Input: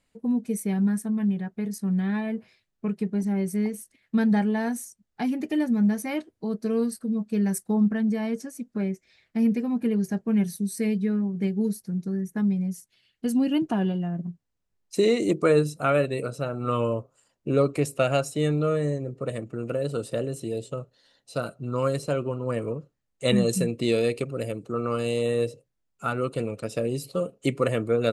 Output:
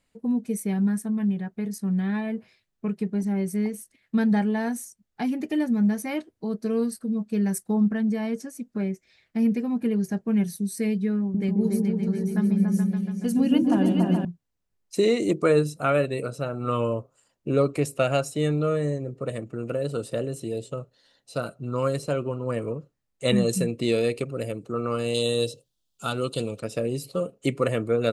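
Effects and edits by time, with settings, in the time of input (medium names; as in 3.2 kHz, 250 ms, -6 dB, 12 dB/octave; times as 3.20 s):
11.20–14.25 s: delay with an opening low-pass 142 ms, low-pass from 400 Hz, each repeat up 2 oct, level 0 dB
25.14–26.59 s: resonant high shelf 2.7 kHz +8 dB, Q 3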